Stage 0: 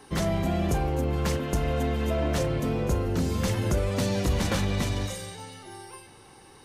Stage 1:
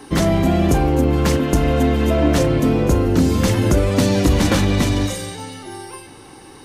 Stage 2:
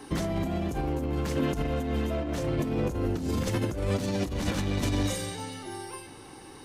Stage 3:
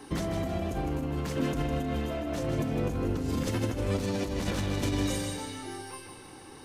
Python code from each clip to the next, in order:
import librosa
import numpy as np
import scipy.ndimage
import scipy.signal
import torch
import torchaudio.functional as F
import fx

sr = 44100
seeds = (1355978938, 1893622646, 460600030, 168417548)

y1 = fx.peak_eq(x, sr, hz=290.0, db=9.0, octaves=0.38)
y1 = F.gain(torch.from_numpy(y1), 9.0).numpy()
y2 = 10.0 ** (-8.5 / 20.0) * np.tanh(y1 / 10.0 ** (-8.5 / 20.0))
y2 = fx.over_compress(y2, sr, threshold_db=-19.0, ratio=-0.5)
y2 = F.gain(torch.from_numpy(y2), -8.5).numpy()
y3 = fx.echo_feedback(y2, sr, ms=156, feedback_pct=45, wet_db=-7)
y3 = F.gain(torch.from_numpy(y3), -2.0).numpy()